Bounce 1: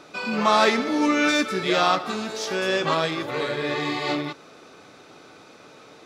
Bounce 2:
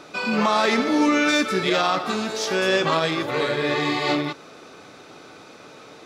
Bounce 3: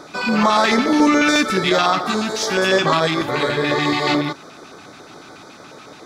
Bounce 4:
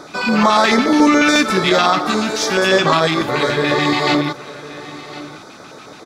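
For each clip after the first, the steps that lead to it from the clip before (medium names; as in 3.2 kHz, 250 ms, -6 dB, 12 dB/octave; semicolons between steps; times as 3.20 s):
peak limiter -14 dBFS, peak gain reduction 8.5 dB; trim +3.5 dB
LFO notch square 7 Hz 490–2700 Hz; trim +5.5 dB
delay 1061 ms -17 dB; trim +2.5 dB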